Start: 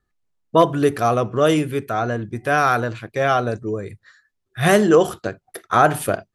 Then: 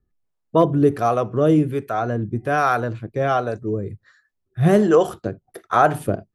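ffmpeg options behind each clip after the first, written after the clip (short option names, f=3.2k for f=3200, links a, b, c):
-filter_complex "[0:a]tiltshelf=f=970:g=5,acrossover=split=490[a][b];[a]aeval=exprs='val(0)*(1-0.7/2+0.7/2*cos(2*PI*1.3*n/s))':c=same[c];[b]aeval=exprs='val(0)*(1-0.7/2-0.7/2*cos(2*PI*1.3*n/s))':c=same[d];[c][d]amix=inputs=2:normalize=0"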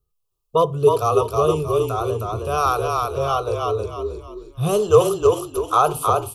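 -filter_complex "[0:a]firequalizer=gain_entry='entry(140,0);entry(270,-22);entry(440,7);entry(630,-3);entry(1200,9);entry(1800,-25);entry(2600,7);entry(7600,10);entry(12000,14)':delay=0.05:min_phase=1,asplit=2[a][b];[b]asplit=5[c][d][e][f][g];[c]adelay=315,afreqshift=-33,volume=-3dB[h];[d]adelay=630,afreqshift=-66,volume=-11.9dB[i];[e]adelay=945,afreqshift=-99,volume=-20.7dB[j];[f]adelay=1260,afreqshift=-132,volume=-29.6dB[k];[g]adelay=1575,afreqshift=-165,volume=-38.5dB[l];[h][i][j][k][l]amix=inputs=5:normalize=0[m];[a][m]amix=inputs=2:normalize=0,volume=-3dB"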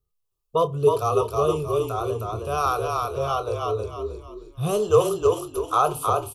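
-filter_complex "[0:a]asplit=2[a][b];[b]adelay=28,volume=-13dB[c];[a][c]amix=inputs=2:normalize=0,volume=-4dB"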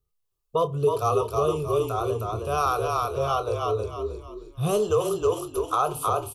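-af "alimiter=limit=-13dB:level=0:latency=1:release=174"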